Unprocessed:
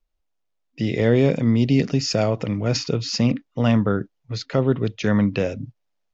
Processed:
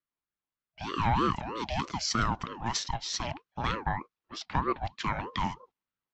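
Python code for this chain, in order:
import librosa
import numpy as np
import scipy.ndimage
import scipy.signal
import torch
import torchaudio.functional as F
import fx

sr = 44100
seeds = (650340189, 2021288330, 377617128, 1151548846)

y = fx.env_lowpass(x, sr, base_hz=2900.0, full_db=-15.0)
y = scipy.signal.sosfilt(scipy.signal.butter(4, 360.0, 'highpass', fs=sr, output='sos'), y)
y = fx.ring_lfo(y, sr, carrier_hz=560.0, swing_pct=40, hz=3.2)
y = y * librosa.db_to_amplitude(-2.5)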